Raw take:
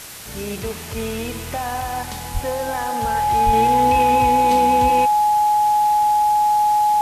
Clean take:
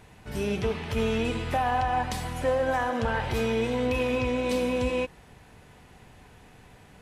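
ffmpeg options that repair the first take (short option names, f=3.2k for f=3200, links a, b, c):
-filter_complex "[0:a]bandreject=f=840:w=30,asplit=3[a][b][c];[a]afade=t=out:st=2.33:d=0.02[d];[b]highpass=f=140:w=0.5412,highpass=f=140:w=1.3066,afade=t=in:st=2.33:d=0.02,afade=t=out:st=2.45:d=0.02[e];[c]afade=t=in:st=2.45:d=0.02[f];[d][e][f]amix=inputs=3:normalize=0,asplit=3[g][h][i];[g]afade=t=out:st=3.45:d=0.02[j];[h]highpass=f=140:w=0.5412,highpass=f=140:w=1.3066,afade=t=in:st=3.45:d=0.02,afade=t=out:st=3.57:d=0.02[k];[i]afade=t=in:st=3.57:d=0.02[l];[j][k][l]amix=inputs=3:normalize=0,afwtdn=0.018,asetnsamples=n=441:p=0,asendcmd='3.53 volume volume -5dB',volume=0dB"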